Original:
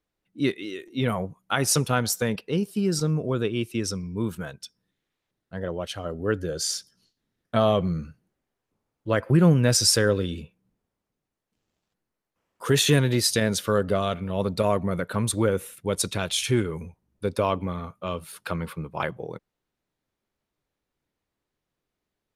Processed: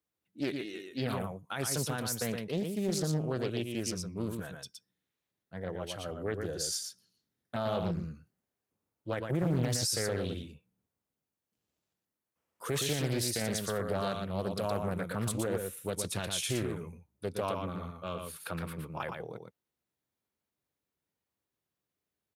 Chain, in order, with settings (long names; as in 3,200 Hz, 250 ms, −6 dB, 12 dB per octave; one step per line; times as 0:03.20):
high-pass filter 59 Hz 24 dB per octave
high-shelf EQ 8,900 Hz +10.5 dB
brickwall limiter −15 dBFS, peak gain reduction 11 dB
single-tap delay 117 ms −5 dB
highs frequency-modulated by the lows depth 0.6 ms
level −8 dB